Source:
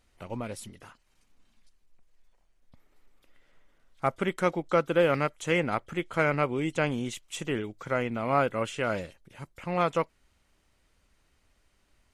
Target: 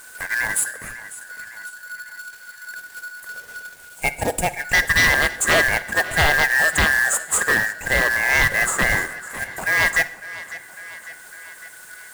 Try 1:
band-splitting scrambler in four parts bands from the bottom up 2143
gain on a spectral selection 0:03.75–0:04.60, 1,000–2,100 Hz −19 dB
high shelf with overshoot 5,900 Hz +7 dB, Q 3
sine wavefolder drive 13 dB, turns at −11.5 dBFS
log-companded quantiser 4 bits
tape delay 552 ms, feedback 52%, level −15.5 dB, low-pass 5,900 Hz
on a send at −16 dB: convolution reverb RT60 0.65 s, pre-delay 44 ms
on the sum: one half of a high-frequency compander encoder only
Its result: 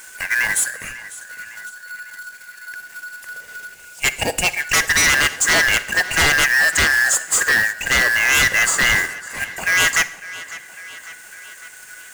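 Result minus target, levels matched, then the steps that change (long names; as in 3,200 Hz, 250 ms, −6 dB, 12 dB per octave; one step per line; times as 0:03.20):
4,000 Hz band +3.5 dB
add after gain on a spectral selection: Butterworth band-reject 3,900 Hz, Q 0.56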